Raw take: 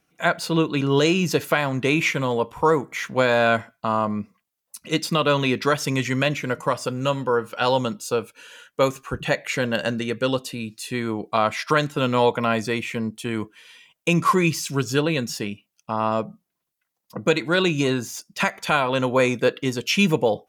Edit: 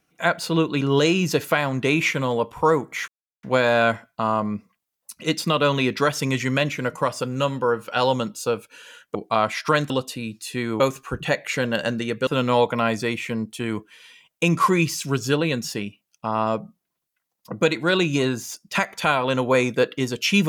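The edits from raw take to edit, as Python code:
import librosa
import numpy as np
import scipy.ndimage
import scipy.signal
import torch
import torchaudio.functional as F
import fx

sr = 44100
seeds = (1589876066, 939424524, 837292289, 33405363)

y = fx.edit(x, sr, fx.insert_silence(at_s=3.08, length_s=0.35),
    fx.swap(start_s=8.8, length_s=1.47, other_s=11.17, other_length_s=0.75), tone=tone)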